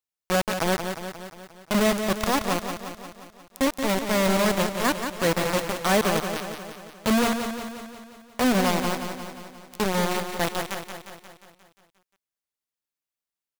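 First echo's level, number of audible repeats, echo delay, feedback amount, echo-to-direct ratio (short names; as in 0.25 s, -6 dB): -7.5 dB, 7, 0.177 s, 59%, -5.5 dB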